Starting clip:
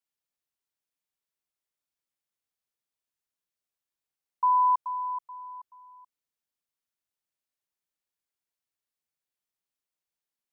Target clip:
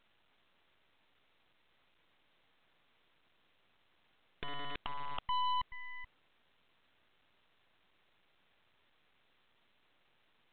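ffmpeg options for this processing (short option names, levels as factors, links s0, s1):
-af "aeval=exprs='(mod(47.3*val(0)+1,2)-1)/47.3':c=same,aeval=exprs='0.0211*(cos(1*acos(clip(val(0)/0.0211,-1,1)))-cos(1*PI/2))+0.00473*(cos(7*acos(clip(val(0)/0.0211,-1,1)))-cos(7*PI/2))+0.00531*(cos(8*acos(clip(val(0)/0.0211,-1,1)))-cos(8*PI/2))':c=same,volume=2" -ar 8000 -c:a pcm_alaw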